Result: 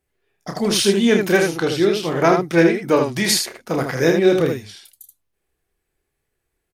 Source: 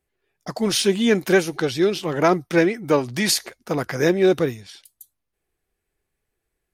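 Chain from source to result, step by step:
ambience of single reflections 30 ms −6.5 dB, 79 ms −5 dB
level +1 dB

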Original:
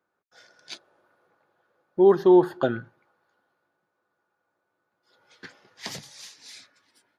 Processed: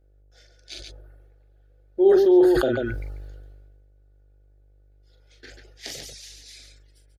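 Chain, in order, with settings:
reverb reduction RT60 0.58 s
hum with harmonics 50 Hz, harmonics 17, −59 dBFS −7 dB per octave
phaser with its sweep stopped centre 430 Hz, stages 4
on a send: multi-tap delay 42/141 ms −8/−10 dB
on the sum: level that may fall only so fast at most 29 dB per second

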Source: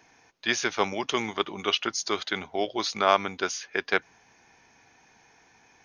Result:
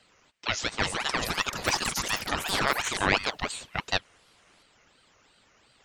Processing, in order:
delay with pitch and tempo change per echo 492 ms, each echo +6 semitones, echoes 3
ring modulator whose carrier an LFO sweeps 1,300 Hz, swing 80%, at 2.8 Hz

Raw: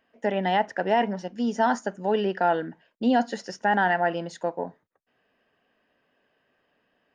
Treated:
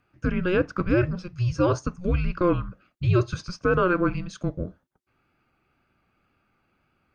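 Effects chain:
tape wow and flutter 22 cents
frequency shifter −360 Hz
level +1 dB

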